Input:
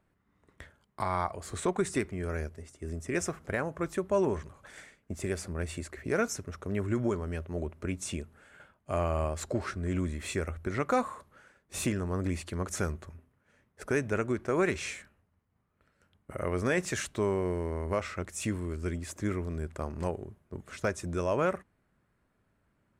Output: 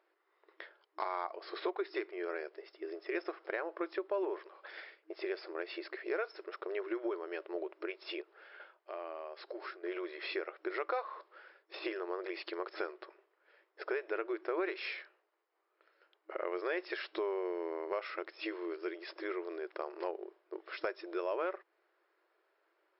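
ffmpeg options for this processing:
ffmpeg -i in.wav -filter_complex "[0:a]asettb=1/sr,asplit=3[link_01][link_02][link_03];[link_01]atrim=end=8.214[link_04];[link_02]atrim=start=8.21:end=9.84,asetpts=PTS-STARTPTS,afade=type=in:duration=0.004:curve=qsin,afade=type=out:start_time=1.626:duration=0.004:curve=qsin,acompressor=threshold=-45dB:ratio=2.5:attack=3.2:release=140:knee=1:detection=peak[link_05];[link_03]atrim=start=9.836[link_06];[link_04][link_05]acrossfade=duration=0.004:curve1=hsin:curve2=qsin[link_07];[link_07][link_06]acrossfade=duration=0.004:curve1=qsin:curve2=hsin,deesser=0.85,afftfilt=real='re*between(b*sr/4096,320,5400)':imag='im*between(b*sr/4096,320,5400)':win_size=4096:overlap=0.75,acompressor=threshold=-38dB:ratio=2.5,volume=2dB" out.wav

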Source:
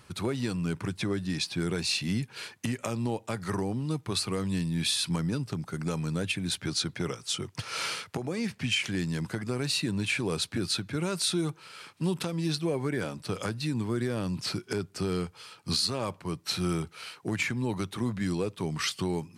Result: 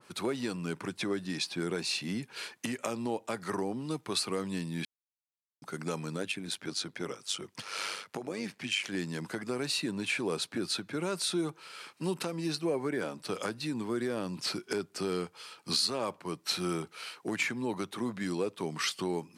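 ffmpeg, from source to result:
ffmpeg -i in.wav -filter_complex "[0:a]asplit=3[link_01][link_02][link_03];[link_01]afade=type=out:start_time=6.16:duration=0.02[link_04];[link_02]tremolo=f=100:d=0.621,afade=type=in:start_time=6.16:duration=0.02,afade=type=out:start_time=8.91:duration=0.02[link_05];[link_03]afade=type=in:start_time=8.91:duration=0.02[link_06];[link_04][link_05][link_06]amix=inputs=3:normalize=0,asettb=1/sr,asplit=3[link_07][link_08][link_09];[link_07]atrim=end=11.954[link_10];[link_08]atrim=start=11.95:end=12.85,asetpts=PTS-STARTPTS,afade=type=in:duration=0.004:curve=qsin,afade=type=out:start_time=0.896:duration=0.004:curve=qsin,bandreject=frequency=3400:width=7.6[link_11];[link_09]atrim=start=12.846[link_12];[link_10][link_11]acrossfade=duration=0.004:curve1=hsin:curve2=qsin[link_13];[link_13][link_12]acrossfade=duration=0.004:curve1=qsin:curve2=hsin,asplit=3[link_14][link_15][link_16];[link_14]atrim=end=4.85,asetpts=PTS-STARTPTS,afade=type=out:start_time=4.846:duration=0.004:curve=hsin[link_17];[link_15]atrim=start=4.85:end=5.62,asetpts=PTS-STARTPTS,volume=0[link_18];[link_16]atrim=start=5.62,asetpts=PTS-STARTPTS,afade=type=in:duration=0.004:curve=hsin[link_19];[link_17][link_18][link_19]concat=n=3:v=0:a=1,highpass=250,adynamicequalizer=threshold=0.00631:dfrequency=1700:dqfactor=0.7:tfrequency=1700:tqfactor=0.7:attack=5:release=100:ratio=0.375:range=2.5:mode=cutabove:tftype=highshelf" out.wav

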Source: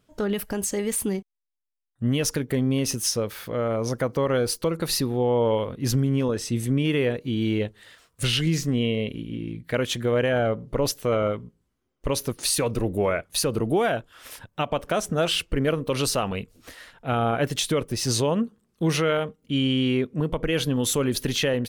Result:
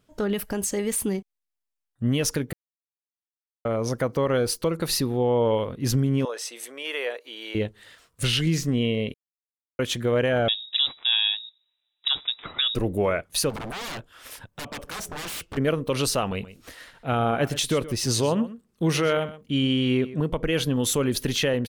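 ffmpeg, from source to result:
ffmpeg -i in.wav -filter_complex "[0:a]asettb=1/sr,asplit=3[link_01][link_02][link_03];[link_01]atrim=end=6.254[link_04];[link_02]atrim=start=6.25:end=7.55,asetpts=PTS-STARTPTS,afade=type=in:duration=0.004:curve=qsin,afade=type=out:start_time=1.296:duration=0.004:curve=qsin,highpass=frequency=540:width=0.5412,highpass=frequency=540:width=1.3066[link_05];[link_03]atrim=start=7.546[link_06];[link_04][link_05]acrossfade=duration=0.004:curve1=hsin:curve2=qsin[link_07];[link_07][link_06]acrossfade=duration=0.004:curve1=qsin:curve2=hsin,asettb=1/sr,asplit=3[link_08][link_09][link_10];[link_08]atrim=end=10.484[link_11];[link_09]atrim=start=10.48:end=12.75,asetpts=PTS-STARTPTS,afade=type=in:duration=0.004:curve=qsin,afade=type=out:start_time=2.266:duration=0.004:curve=qsin,lowpass=frequency=3300:width_type=q:width=0.5098,lowpass=frequency=3300:width_type=q:width=0.6013,lowpass=frequency=3300:width_type=q:width=0.9,lowpass=frequency=3300:width_type=q:width=2.563,afreqshift=-3900[link_12];[link_10]atrim=start=12.746[link_13];[link_11][link_12]acrossfade=duration=0.004:curve1=hsin:curve2=qsin[link_14];[link_14][link_13]acrossfade=duration=0.004:curve1=qsin:curve2=hsin,asplit=3[link_15][link_16][link_17];[link_15]afade=type=out:start_time=13.49:duration=0.02[link_18];[link_16]aeval=exprs='0.0355*(abs(mod(val(0)/0.0355+3,4)-2)-1)':channel_layout=same,afade=type=in:start_time=13.49:duration=0.02,afade=type=out:start_time=15.56:duration=0.02[link_19];[link_17]afade=type=in:start_time=15.56:duration=0.02[link_20];[link_18][link_19][link_20]amix=inputs=3:normalize=0,asplit=3[link_21][link_22][link_23];[link_21]afade=type=out:start_time=16.41:duration=0.02[link_24];[link_22]aecho=1:1:125:0.168,afade=type=in:start_time=16.41:duration=0.02,afade=type=out:start_time=20.28:duration=0.02[link_25];[link_23]afade=type=in:start_time=20.28:duration=0.02[link_26];[link_24][link_25][link_26]amix=inputs=3:normalize=0,asplit=5[link_27][link_28][link_29][link_30][link_31];[link_27]atrim=end=2.53,asetpts=PTS-STARTPTS,afade=type=out:start_time=2.526:duration=0.004:curve=hsin[link_32];[link_28]atrim=start=2.53:end=3.65,asetpts=PTS-STARTPTS,volume=0[link_33];[link_29]atrim=start=3.65:end=9.14,asetpts=PTS-STARTPTS,afade=type=in:duration=0.004:curve=hsin,afade=type=out:start_time=5.486:duration=0.004:curve=hsin[link_34];[link_30]atrim=start=9.14:end=9.79,asetpts=PTS-STARTPTS,volume=0[link_35];[link_31]atrim=start=9.79,asetpts=PTS-STARTPTS,afade=type=in:duration=0.004:curve=hsin[link_36];[link_32][link_33][link_34][link_35][link_36]concat=n=5:v=0:a=1" out.wav

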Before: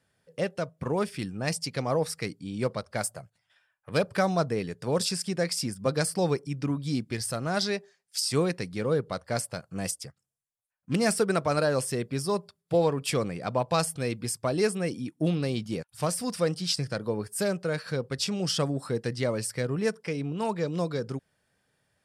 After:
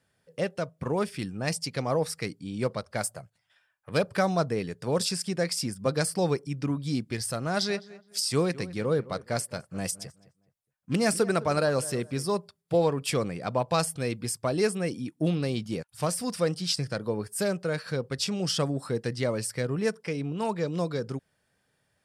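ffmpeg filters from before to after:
ffmpeg -i in.wav -filter_complex "[0:a]asettb=1/sr,asplit=3[link_01][link_02][link_03];[link_01]atrim=end=7.484[link_04];[link_02]atrim=start=7.48:end=12.26,asetpts=PTS-STARTPTS,afade=type=in:duration=0.004:curve=qsin,afade=type=out:start_time=4.776:duration=0.004:curve=qsin,asplit=2[link_05][link_06];[link_06]adelay=209,lowpass=frequency=2100:poles=1,volume=-17.5dB,asplit=2[link_07][link_08];[link_08]adelay=209,lowpass=frequency=2100:poles=1,volume=0.29,asplit=2[link_09][link_10];[link_10]adelay=209,lowpass=frequency=2100:poles=1,volume=0.29[link_11];[link_05][link_07][link_09][link_11]amix=inputs=4:normalize=0,atrim=end_sample=210798[link_12];[link_03]atrim=start=12.256[link_13];[link_04][link_12]acrossfade=duration=0.004:curve1=hsin:curve2=qsin[link_14];[link_14][link_13]acrossfade=duration=0.004:curve1=qsin:curve2=hsin" out.wav

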